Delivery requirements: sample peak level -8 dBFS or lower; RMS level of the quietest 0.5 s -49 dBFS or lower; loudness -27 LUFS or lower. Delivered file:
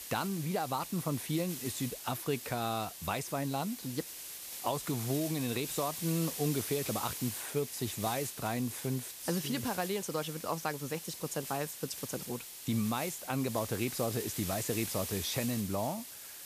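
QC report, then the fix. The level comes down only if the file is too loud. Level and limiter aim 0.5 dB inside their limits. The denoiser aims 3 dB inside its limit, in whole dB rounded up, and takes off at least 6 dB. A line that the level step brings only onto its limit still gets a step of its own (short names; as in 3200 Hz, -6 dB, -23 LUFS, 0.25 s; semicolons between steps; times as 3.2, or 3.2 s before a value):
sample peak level -18.5 dBFS: OK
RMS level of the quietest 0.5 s -45 dBFS: fail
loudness -35.0 LUFS: OK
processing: denoiser 7 dB, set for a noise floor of -45 dBFS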